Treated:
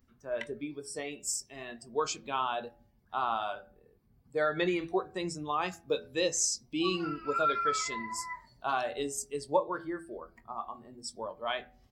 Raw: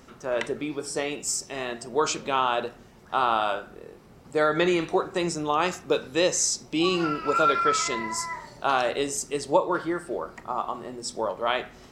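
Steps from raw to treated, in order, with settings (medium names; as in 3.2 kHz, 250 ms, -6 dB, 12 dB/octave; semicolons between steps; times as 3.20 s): expander on every frequency bin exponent 1.5; treble shelf 10 kHz +3.5 dB; doubling 21 ms -13.5 dB; de-hum 83.37 Hz, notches 10; trim -4.5 dB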